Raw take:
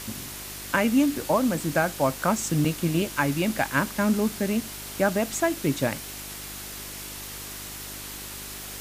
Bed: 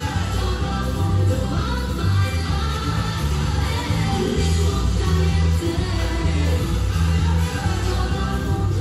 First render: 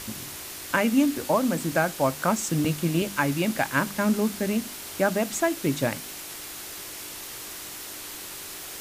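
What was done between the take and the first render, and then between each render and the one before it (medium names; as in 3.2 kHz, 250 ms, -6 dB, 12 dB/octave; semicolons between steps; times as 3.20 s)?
de-hum 50 Hz, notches 5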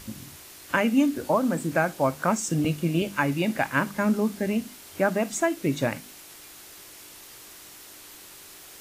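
noise print and reduce 8 dB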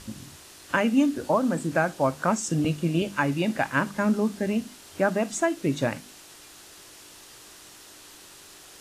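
low-pass 10 kHz 12 dB/octave; peaking EQ 2.2 kHz -4.5 dB 0.22 oct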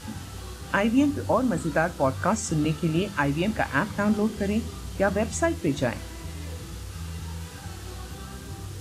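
add bed -17 dB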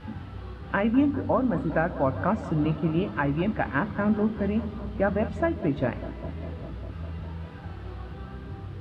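distance through air 430 m; bucket-brigade echo 201 ms, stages 2048, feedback 80%, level -15.5 dB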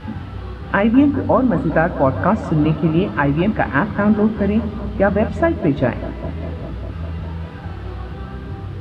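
trim +9 dB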